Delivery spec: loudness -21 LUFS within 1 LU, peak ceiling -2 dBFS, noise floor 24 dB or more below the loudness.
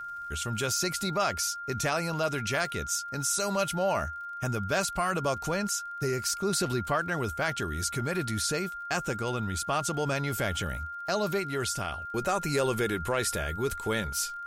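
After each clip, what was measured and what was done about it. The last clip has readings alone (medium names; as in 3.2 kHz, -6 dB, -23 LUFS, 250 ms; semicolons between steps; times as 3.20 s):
tick rate 42 per s; steady tone 1.4 kHz; tone level -36 dBFS; loudness -30.0 LUFS; peak level -15.0 dBFS; loudness target -21.0 LUFS
-> de-click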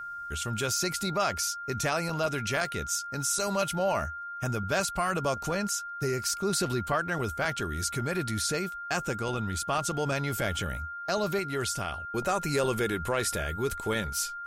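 tick rate 0.069 per s; steady tone 1.4 kHz; tone level -36 dBFS
-> band-stop 1.4 kHz, Q 30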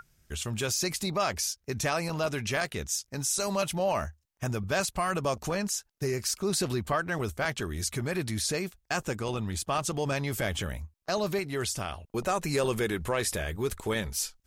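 steady tone not found; loudness -30.5 LUFS; peak level -15.5 dBFS; loudness target -21.0 LUFS
-> trim +9.5 dB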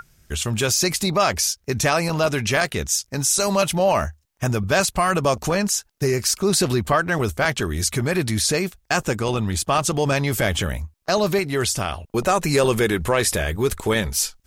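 loudness -21.0 LUFS; peak level -6.0 dBFS; noise floor -64 dBFS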